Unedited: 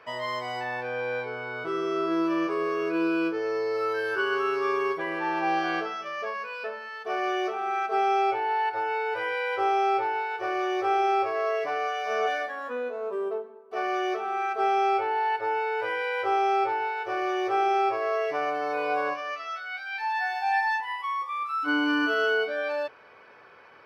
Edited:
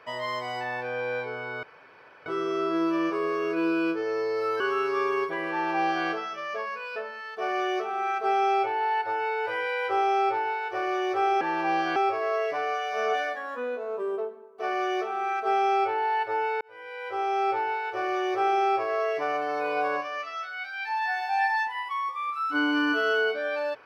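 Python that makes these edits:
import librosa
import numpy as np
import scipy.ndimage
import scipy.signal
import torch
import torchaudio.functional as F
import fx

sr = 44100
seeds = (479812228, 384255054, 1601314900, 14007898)

y = fx.edit(x, sr, fx.insert_room_tone(at_s=1.63, length_s=0.63),
    fx.cut(start_s=3.97, length_s=0.31),
    fx.duplicate(start_s=5.19, length_s=0.55, to_s=11.09),
    fx.fade_in_span(start_s=15.74, length_s=0.98), tone=tone)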